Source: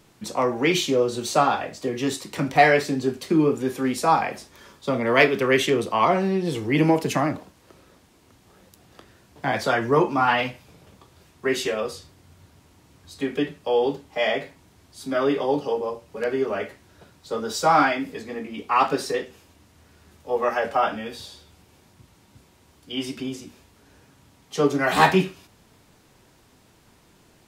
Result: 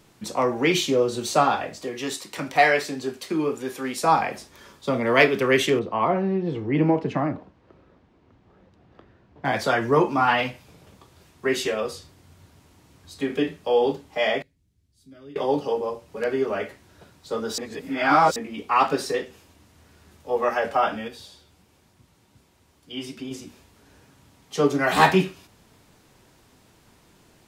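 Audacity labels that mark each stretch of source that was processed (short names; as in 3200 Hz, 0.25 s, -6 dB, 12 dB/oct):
1.840000	4.040000	low shelf 320 Hz -11.5 dB
5.790000	9.450000	tape spacing loss at 10 kHz 34 dB
13.260000	13.920000	doubler 37 ms -9 dB
14.420000	15.360000	passive tone stack bass-middle-treble 10-0-1
17.580000	18.360000	reverse
21.080000	23.310000	flange 1.3 Hz, delay 0.2 ms, depth 8.5 ms, regen +74%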